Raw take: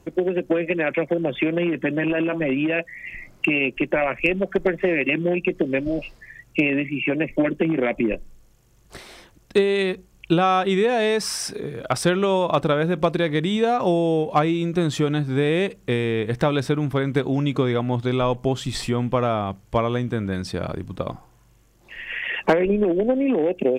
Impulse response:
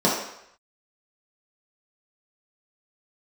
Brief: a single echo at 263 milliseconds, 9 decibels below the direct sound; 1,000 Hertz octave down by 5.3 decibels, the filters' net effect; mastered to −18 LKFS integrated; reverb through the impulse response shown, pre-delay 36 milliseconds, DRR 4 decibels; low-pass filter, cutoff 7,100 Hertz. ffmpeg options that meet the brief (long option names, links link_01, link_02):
-filter_complex "[0:a]lowpass=7100,equalizer=frequency=1000:width_type=o:gain=-8,aecho=1:1:263:0.355,asplit=2[link_01][link_02];[1:a]atrim=start_sample=2205,adelay=36[link_03];[link_02][link_03]afir=irnorm=-1:irlink=0,volume=-22dB[link_04];[link_01][link_04]amix=inputs=2:normalize=0,volume=2dB"